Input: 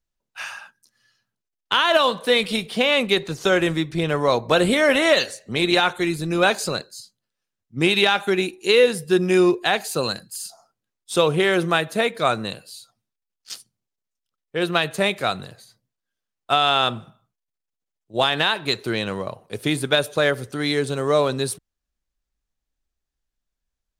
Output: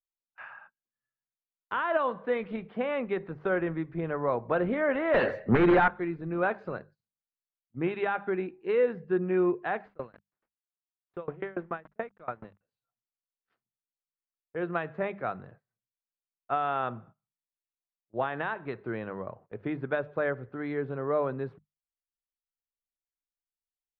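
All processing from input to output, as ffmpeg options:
ffmpeg -i in.wav -filter_complex "[0:a]asettb=1/sr,asplit=3[link_01][link_02][link_03];[link_01]atrim=end=5.144[link_04];[link_02]atrim=start=5.14:end=5.88,asetpts=PTS-STARTPTS,afade=type=in:duration=0.004:curve=qsin,afade=type=out:start_time=0.736:duration=0.004:curve=qsin,acompressor=threshold=-20dB:ratio=6:attack=3.2:release=140:knee=1:detection=peak,aeval=exprs='0.473*sin(PI/2*5.62*val(0)/0.473)':channel_layout=same[link_05];[link_03]atrim=start=5.876[link_06];[link_04][link_05]acrossfade=duration=0.004:curve1=hsin:curve2=qsin[link_07];[link_07][link_06]acrossfade=duration=0.004:curve1=qsin:curve2=hsin,asettb=1/sr,asplit=3[link_08][link_09][link_10];[link_08]atrim=end=9.854[link_11];[link_09]atrim=start=9.85:end=12.61,asetpts=PTS-STARTPTS,afade=type=in:duration=0.004:curve=qsin,afade=type=out:start_time=2.756:duration=0.004:curve=qsin,aeval=exprs='val(0)*gte(abs(val(0)),0.0335)':channel_layout=same,aeval=exprs='val(0)*pow(10,-28*if(lt(mod(7*n/s,1),2*abs(7)/1000),1-mod(7*n/s,1)/(2*abs(7)/1000),(mod(7*n/s,1)-2*abs(7)/1000)/(1-2*abs(7)/1000))/20)':channel_layout=same[link_12];[link_10]atrim=start=12.606[link_13];[link_11][link_12]acrossfade=duration=0.004:curve1=hsin:curve2=qsin[link_14];[link_14][link_13]acrossfade=duration=0.004:curve1=qsin:curve2=hsin,lowpass=frequency=1800:width=0.5412,lowpass=frequency=1800:width=1.3066,bandreject=frequency=50:width_type=h:width=6,bandreject=frequency=100:width_type=h:width=6,bandreject=frequency=150:width_type=h:width=6,bandreject=frequency=200:width_type=h:width=6,agate=range=-18dB:threshold=-44dB:ratio=16:detection=peak,volume=-9dB" out.wav

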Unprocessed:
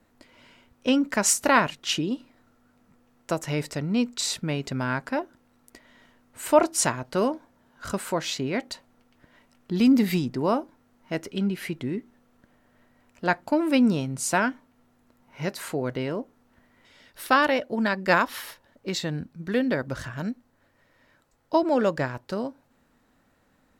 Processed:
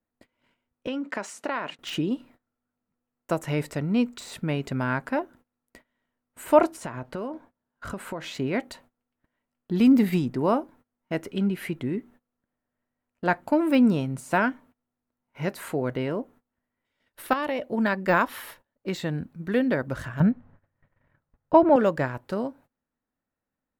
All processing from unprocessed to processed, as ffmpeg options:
ffmpeg -i in.wav -filter_complex "[0:a]asettb=1/sr,asplit=3[link_01][link_02][link_03];[link_01]atrim=end=0.874[link_04];[link_02]atrim=start=0.87:end=1.79,asetpts=PTS-STARTPTS,afade=type=in:duration=0.004:curve=qsin,afade=type=out:start_time=0.916:duration=0.004:curve=qsin,acompressor=threshold=-25dB:ratio=6:attack=3.2:release=140:knee=1:detection=peak,highpass=280,lowpass=5800,agate=range=-33dB:threshold=-44dB:ratio=3:release=100:detection=peak[link_05];[link_03]atrim=start=1.786[link_06];[link_04][link_05]acrossfade=duration=0.004:curve1=hsin:curve2=qsin[link_07];[link_07][link_06]acrossfade=duration=0.004:curve1=qsin:curve2=hsin,asettb=1/sr,asplit=3[link_08][link_09][link_10];[link_08]atrim=end=6.744[link_11];[link_09]atrim=start=6.74:end=8.35,asetpts=PTS-STARTPTS,afade=type=in:duration=0.004:curve=qsin,afade=type=out:start_time=1.606:duration=0.004:curve=qsin,highshelf=frequency=5100:gain=-8,acompressor=threshold=-29dB:ratio=10:attack=3.2:release=140:knee=1:detection=peak[link_12];[link_10]atrim=start=8.346[link_13];[link_11][link_12]acrossfade=duration=0.004:curve1=hsin:curve2=qsin[link_14];[link_14][link_13]acrossfade=duration=0.004:curve1=qsin:curve2=hsin,asettb=1/sr,asplit=3[link_15][link_16][link_17];[link_15]atrim=end=17.334[link_18];[link_16]atrim=start=17.33:end=17.74,asetpts=PTS-STARTPTS,afade=type=in:duration=0.004:curve=qsin,afade=type=out:start_time=0.406:duration=0.004:curve=qsin,equalizer=frequency=1500:width_type=o:width=0.36:gain=-7.5,acompressor=threshold=-24dB:ratio=10:attack=3.2:release=140:knee=1:detection=peak[link_19];[link_17]atrim=start=17.736[link_20];[link_18][link_19]acrossfade=duration=0.004:curve1=hsin:curve2=qsin[link_21];[link_21][link_20]acrossfade=duration=0.004:curve1=qsin:curve2=hsin,asettb=1/sr,asplit=3[link_22][link_23][link_24];[link_22]atrim=end=20.204[link_25];[link_23]atrim=start=20.2:end=21.76,asetpts=PTS-STARTPTS,afade=type=in:duration=0.004:curve=qsin,afade=type=out:start_time=1.556:duration=0.004:curve=qsin,lowshelf=frequency=200:width_type=q:width=1.5:gain=8,acontrast=43,lowpass=2200[link_26];[link_24]atrim=start=21.756[link_27];[link_25][link_26]acrossfade=duration=0.004:curve1=hsin:curve2=qsin[link_28];[link_28][link_27]acrossfade=duration=0.004:curve1=qsin:curve2=hsin,deesser=0.7,agate=range=-23dB:threshold=-51dB:ratio=16:detection=peak,equalizer=frequency=5300:width=1.1:gain=-8.5,volume=1dB" out.wav

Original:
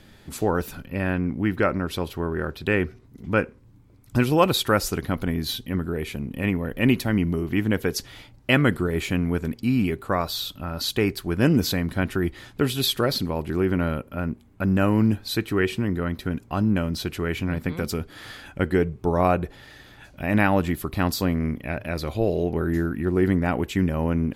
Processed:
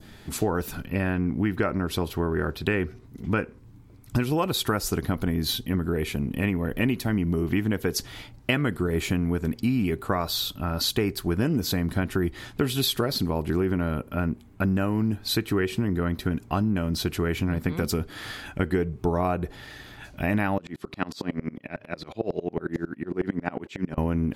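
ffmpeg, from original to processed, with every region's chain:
ffmpeg -i in.wav -filter_complex "[0:a]asettb=1/sr,asplit=3[link_01][link_02][link_03];[link_01]atrim=end=20.584[link_04];[link_02]atrim=start=20.58:end=23.98,asetpts=PTS-STARTPTS,afade=type=in:duration=0.004:curve=qsin,afade=type=out:start_time=3.396:duration=0.004:curve=qsin,highpass=170,lowpass=6400,aeval=exprs='val(0)*pow(10,-30*if(lt(mod(-11*n/s,1),2*abs(-11)/1000),1-mod(-11*n/s,1)/(2*abs(-11)/1000),(mod(-11*n/s,1)-2*abs(-11)/1000)/(1-2*abs(-11)/1000))/20)':channel_layout=same[link_05];[link_03]atrim=start=23.976[link_06];[link_04][link_05]acrossfade=duration=0.004:curve1=hsin:curve2=qsin[link_07];[link_07][link_06]acrossfade=duration=0.004:curve1=qsin:curve2=hsin,bandreject=frequency=540:width=12,adynamicequalizer=threshold=0.00891:dfrequency=2500:dqfactor=0.93:tfrequency=2500:tqfactor=0.93:attack=5:release=100:ratio=0.375:range=2.5:mode=cutabove:tftype=bell,acompressor=threshold=-24dB:ratio=6,volume=3.5dB" out.wav

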